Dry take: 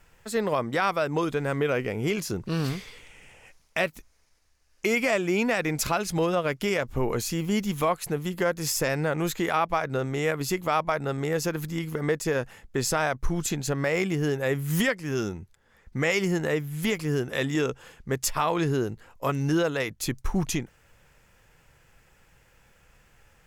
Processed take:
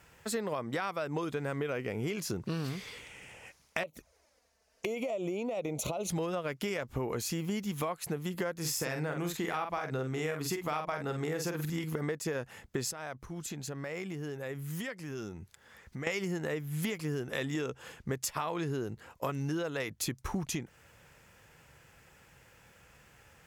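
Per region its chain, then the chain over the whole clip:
3.83–6.10 s: peaking EQ 580 Hz +12.5 dB 0.89 oct + compression 10:1, threshold -25 dBFS + touch-sensitive flanger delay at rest 4.9 ms, full sweep at -30.5 dBFS
8.59–11.84 s: band-stop 570 Hz, Q 9.7 + doubling 46 ms -6 dB
12.91–16.07 s: compression 2.5:1, threshold -44 dBFS + tape noise reduction on one side only encoder only
whole clip: high-pass 68 Hz; compression, threshold -33 dBFS; trim +1.5 dB

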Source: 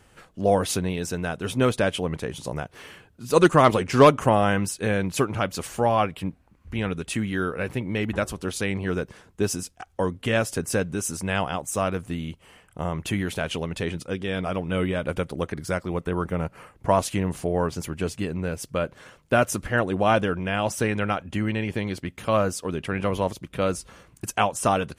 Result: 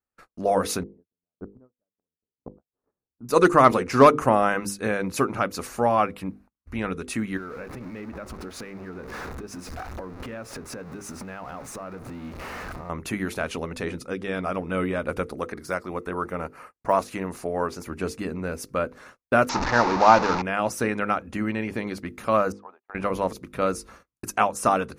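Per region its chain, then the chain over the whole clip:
0.83–3.29 s: Bessel low-pass 650 Hz, order 4 + inverted gate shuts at -23 dBFS, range -29 dB
7.37–12.90 s: jump at every zero crossing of -27.5 dBFS + low-pass 2.1 kHz 6 dB/octave + compression 12:1, threshold -32 dBFS
15.33–17.86 s: de-esser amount 75% + bass shelf 270 Hz -6.5 dB
19.49–20.42 s: one-bit delta coder 32 kbps, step -20 dBFS + peaking EQ 900 Hz +13.5 dB 0.38 oct
22.52–22.95 s: ladder band-pass 890 Hz, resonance 65% + tape noise reduction on one side only encoder only
whole clip: hum notches 50/100/150/200/250/300/350/400/450/500 Hz; gate -47 dBFS, range -36 dB; graphic EQ with 31 bands 100 Hz -10 dB, 160 Hz -6 dB, 250 Hz +3 dB, 1.25 kHz +5 dB, 3.15 kHz -10 dB, 8 kHz -5 dB

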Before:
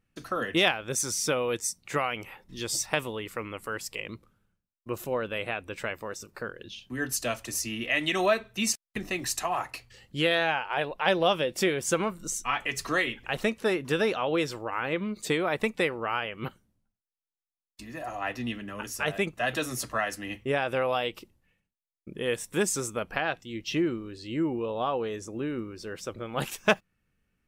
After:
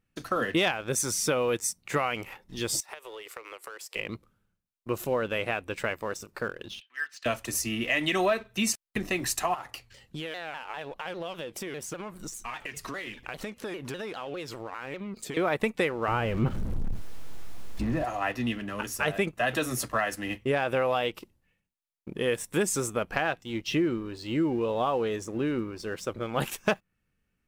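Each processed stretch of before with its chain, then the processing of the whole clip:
2.80–3.96 s: steep high-pass 360 Hz 48 dB/octave + compression 12:1, threshold -40 dBFS
6.80–7.26 s: Butterworth band-pass 2.2 kHz, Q 1.1 + dynamic bell 2.7 kHz, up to -5 dB, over -54 dBFS, Q 2.1
9.54–15.37 s: compression, threshold -37 dBFS + vibrato with a chosen wave saw down 5 Hz, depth 160 cents
16.08–18.05 s: jump at every zero crossing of -39.5 dBFS + tilt EQ -3.5 dB/octave
whole clip: dynamic bell 5.1 kHz, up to -4 dB, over -44 dBFS, Q 0.81; waveshaping leveller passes 1; compression 2.5:1, threshold -23 dBFS

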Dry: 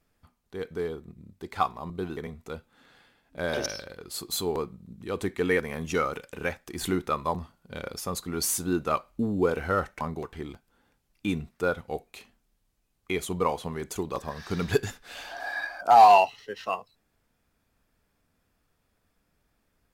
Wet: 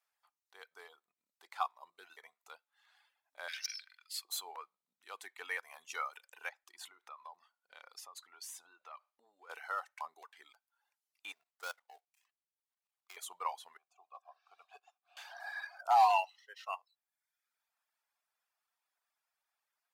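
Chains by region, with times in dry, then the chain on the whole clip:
3.48–4.25 s: peaking EQ 4.9 kHz +6.5 dB 0.25 oct + hard clipper -21.5 dBFS + resonant high-pass 2.1 kHz, resonance Q 2.2
6.49–9.50 s: treble shelf 7.9 kHz -10 dB + compression 10:1, threshold -34 dBFS
11.32–13.17 s: dead-time distortion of 0.14 ms + level held to a coarse grid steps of 13 dB
13.77–15.17 s: block-companded coder 5-bit + vowel filter a + peaking EQ 2.3 kHz -4.5 dB 1.6 oct
whole clip: Chebyshev high-pass 810 Hz, order 3; reverb removal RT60 0.86 s; trim -8 dB

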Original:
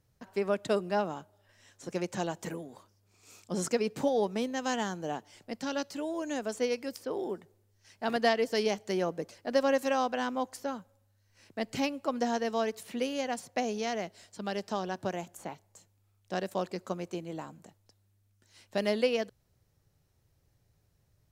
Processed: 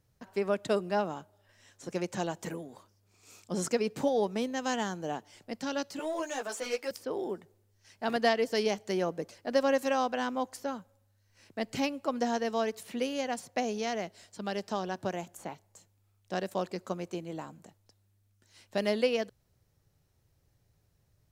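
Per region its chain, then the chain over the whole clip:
5.99–6.91 s: high-pass 480 Hz + waveshaping leveller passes 2 + three-phase chorus
whole clip: none

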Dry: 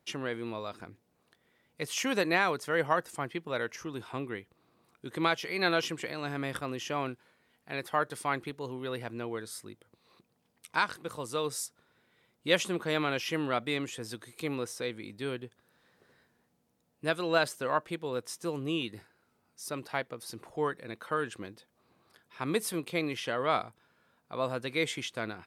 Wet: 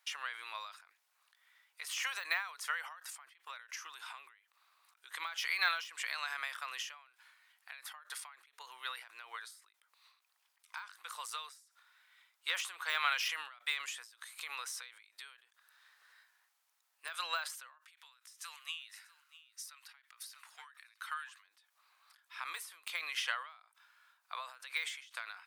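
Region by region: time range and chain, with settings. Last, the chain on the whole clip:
17.80–21.45 s: high-pass 1.3 kHz + delay 641 ms -20.5 dB
whole clip: de-esser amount 100%; high-pass 1.1 kHz 24 dB/octave; endings held to a fixed fall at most 100 dB/s; trim +4.5 dB

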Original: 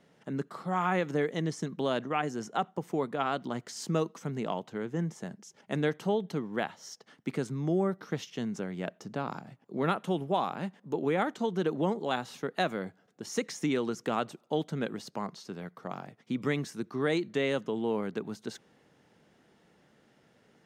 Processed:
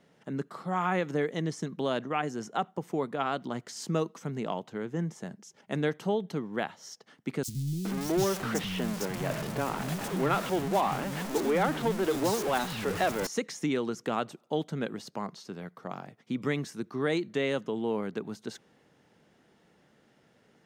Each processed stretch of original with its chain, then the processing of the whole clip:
7.43–13.27 s: jump at every zero crossing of -29 dBFS + three bands offset in time highs, lows, mids 50/420 ms, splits 210/3900 Hz
whole clip: none

